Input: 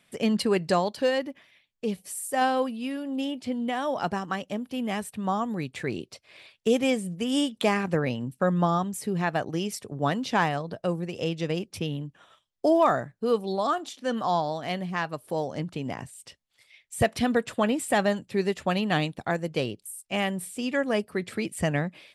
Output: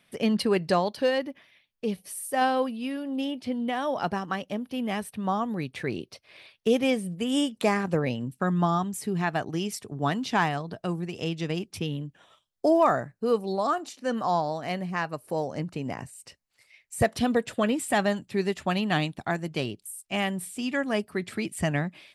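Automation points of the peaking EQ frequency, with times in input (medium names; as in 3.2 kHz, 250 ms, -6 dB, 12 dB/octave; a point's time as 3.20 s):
peaking EQ -11 dB 0.22 oct
7.02 s 7.4 kHz
7.83 s 2.5 kHz
8.41 s 530 Hz
11.78 s 530 Hz
12.72 s 3.4 kHz
16.98 s 3.4 kHz
17.89 s 500 Hz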